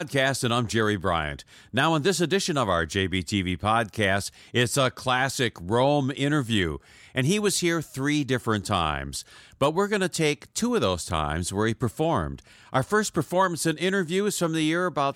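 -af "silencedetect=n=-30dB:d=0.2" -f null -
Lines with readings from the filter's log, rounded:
silence_start: 1.40
silence_end: 1.74 | silence_duration: 0.34
silence_start: 4.28
silence_end: 4.54 | silence_duration: 0.27
silence_start: 6.76
silence_end: 7.15 | silence_duration: 0.39
silence_start: 9.21
silence_end: 9.61 | silence_duration: 0.40
silence_start: 12.35
silence_end: 12.73 | silence_duration: 0.38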